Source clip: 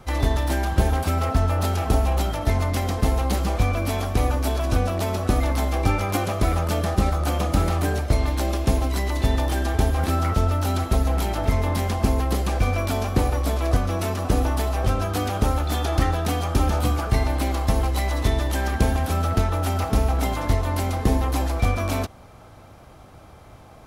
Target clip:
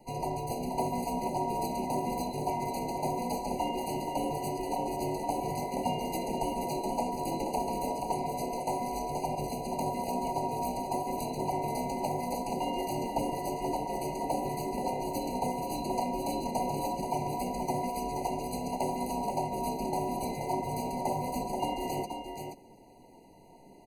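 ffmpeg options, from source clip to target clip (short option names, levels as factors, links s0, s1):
-filter_complex "[0:a]afftfilt=real='real(if(between(b,1,1008),(2*floor((b-1)/48)+1)*48-b,b),0)':imag='imag(if(between(b,1,1008),(2*floor((b-1)/48)+1)*48-b,b),0)*if(between(b,1,1008),-1,1)':win_size=2048:overlap=0.75,aeval=exprs='0.376*(abs(mod(val(0)/0.376+3,4)-2)-1)':c=same,asplit=2[s0][s1];[s1]aecho=0:1:478:0.501[s2];[s0][s2]amix=inputs=2:normalize=0,asplit=2[s3][s4];[s4]asetrate=33038,aresample=44100,atempo=1.33484,volume=0.447[s5];[s3][s5]amix=inputs=2:normalize=0,equalizer=f=1500:w=0.66:g=-14,afftfilt=real='re*eq(mod(floor(b*sr/1024/990),2),0)':imag='im*eq(mod(floor(b*sr/1024/990),2),0)':win_size=1024:overlap=0.75,volume=0.562"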